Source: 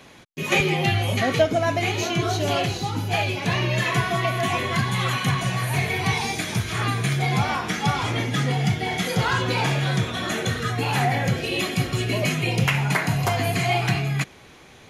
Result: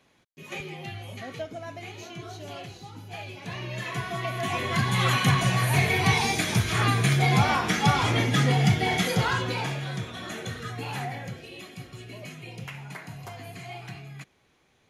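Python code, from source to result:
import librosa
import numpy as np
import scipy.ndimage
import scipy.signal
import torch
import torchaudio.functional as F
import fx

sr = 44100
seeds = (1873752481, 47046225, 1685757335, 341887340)

y = fx.gain(x, sr, db=fx.line((3.05, -16.5), (4.34, -7.0), (5.09, 1.0), (8.94, 1.0), (9.85, -10.0), (10.92, -10.0), (11.57, -18.0)))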